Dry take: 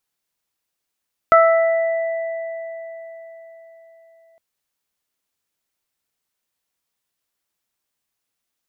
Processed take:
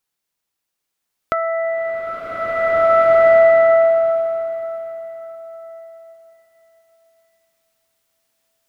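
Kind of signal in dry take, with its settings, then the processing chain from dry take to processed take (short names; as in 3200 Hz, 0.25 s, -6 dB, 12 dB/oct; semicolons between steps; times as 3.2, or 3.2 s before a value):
additive tone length 3.06 s, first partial 660 Hz, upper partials 2/-11 dB, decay 4.40 s, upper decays 0.80/3.97 s, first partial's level -10 dB
compressor 3:1, threshold -20 dBFS; bloom reverb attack 1.95 s, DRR -9.5 dB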